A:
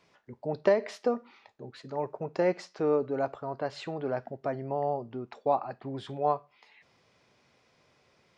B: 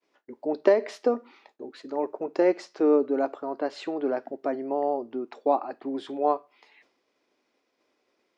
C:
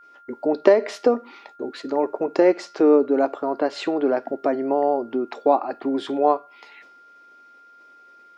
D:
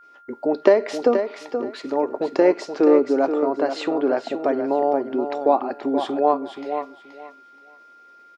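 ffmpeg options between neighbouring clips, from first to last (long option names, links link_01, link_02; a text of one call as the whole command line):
ffmpeg -i in.wav -af "agate=range=-33dB:threshold=-58dB:ratio=3:detection=peak,lowshelf=frequency=200:width_type=q:width=3:gain=-13,volume=1.5dB" out.wav
ffmpeg -i in.wav -filter_complex "[0:a]asplit=2[link_01][link_02];[link_02]acompressor=threshold=-32dB:ratio=6,volume=0.5dB[link_03];[link_01][link_03]amix=inputs=2:normalize=0,aeval=exprs='val(0)+0.00282*sin(2*PI*1400*n/s)':channel_layout=same,volume=3.5dB" out.wav
ffmpeg -i in.wav -af "aecho=1:1:477|954|1431:0.398|0.0756|0.0144" out.wav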